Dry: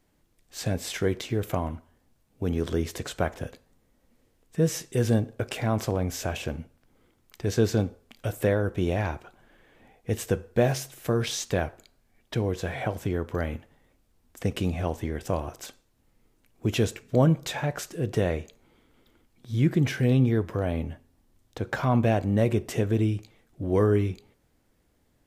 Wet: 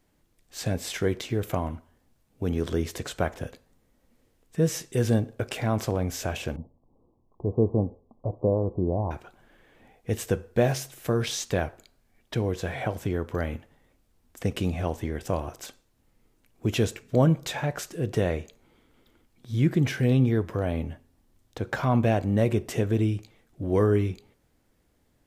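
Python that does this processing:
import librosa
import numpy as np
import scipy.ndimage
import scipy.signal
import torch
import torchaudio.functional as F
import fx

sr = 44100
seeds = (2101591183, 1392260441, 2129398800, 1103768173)

y = fx.steep_lowpass(x, sr, hz=1100.0, slope=96, at=(6.56, 9.11))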